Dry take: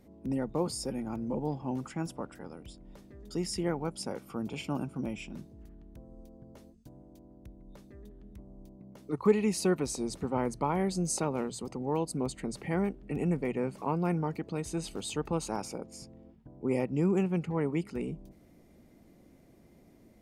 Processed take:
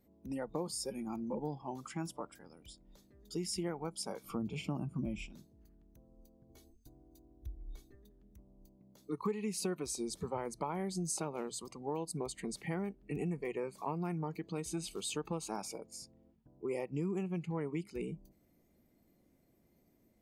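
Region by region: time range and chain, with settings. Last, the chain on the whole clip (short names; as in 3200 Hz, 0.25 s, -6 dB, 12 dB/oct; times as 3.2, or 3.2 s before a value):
4.24–5.26 tilt -2 dB/oct + mismatched tape noise reduction encoder only
6.49–7.95 low shelf 240 Hz +5 dB + comb 2.7 ms, depth 73%
whole clip: spectral noise reduction 11 dB; high shelf 11000 Hz +6 dB; compressor 4:1, threshold -33 dBFS; gain -1 dB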